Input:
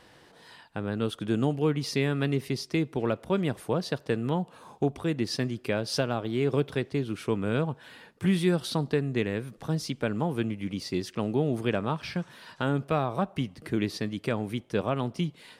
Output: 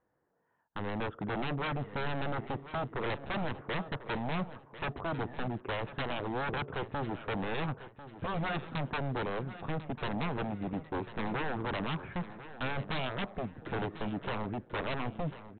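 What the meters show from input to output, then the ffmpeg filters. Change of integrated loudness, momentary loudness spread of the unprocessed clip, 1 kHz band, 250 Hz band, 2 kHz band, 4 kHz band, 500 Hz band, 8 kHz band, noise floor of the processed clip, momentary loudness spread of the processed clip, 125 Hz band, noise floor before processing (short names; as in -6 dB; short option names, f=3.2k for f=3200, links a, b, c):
-7.0 dB, 6 LU, -0.5 dB, -9.0 dB, -1.0 dB, -6.0 dB, -8.5 dB, under -35 dB, -62 dBFS, 4 LU, -8.0 dB, -56 dBFS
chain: -af "lowpass=f=1.6k:w=0.5412,lowpass=f=1.6k:w=1.3066,agate=range=-22dB:threshold=-46dB:ratio=16:detection=peak,equalizer=f=490:w=1.5:g=2,aresample=8000,aeval=exprs='0.0376*(abs(mod(val(0)/0.0376+3,4)-2)-1)':c=same,aresample=44100,aecho=1:1:1045|2090|3135:0.2|0.0658|0.0217"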